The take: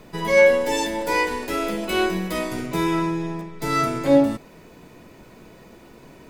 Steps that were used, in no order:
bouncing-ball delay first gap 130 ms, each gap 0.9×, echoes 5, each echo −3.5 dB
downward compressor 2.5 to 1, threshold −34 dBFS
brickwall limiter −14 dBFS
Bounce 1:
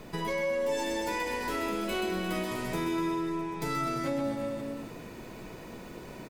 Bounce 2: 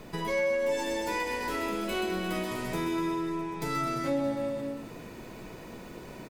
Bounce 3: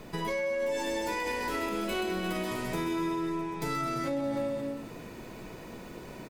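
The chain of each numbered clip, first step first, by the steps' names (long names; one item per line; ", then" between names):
brickwall limiter, then bouncing-ball delay, then downward compressor
bouncing-ball delay, then downward compressor, then brickwall limiter
bouncing-ball delay, then brickwall limiter, then downward compressor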